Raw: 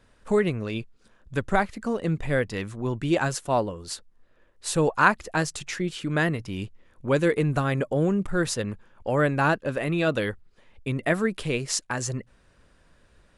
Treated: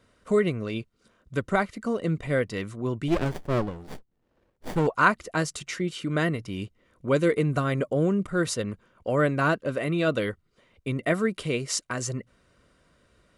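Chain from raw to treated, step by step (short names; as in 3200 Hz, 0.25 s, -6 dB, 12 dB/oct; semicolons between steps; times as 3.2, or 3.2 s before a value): notch comb 840 Hz; 3.08–4.87 running maximum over 33 samples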